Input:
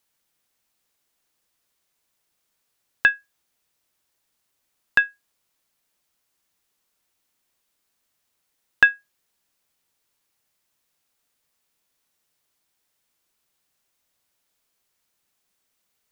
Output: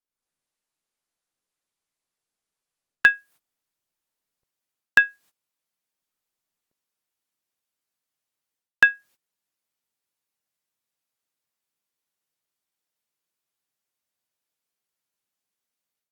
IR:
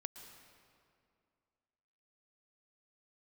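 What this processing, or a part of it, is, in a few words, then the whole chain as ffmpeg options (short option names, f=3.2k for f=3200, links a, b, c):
video call: -af "highpass=100,lowshelf=f=180:g=2,dynaudnorm=f=130:g=3:m=13dB,agate=range=-23dB:threshold=-49dB:ratio=16:detection=peak,volume=-1dB" -ar 48000 -c:a libopus -b:a 32k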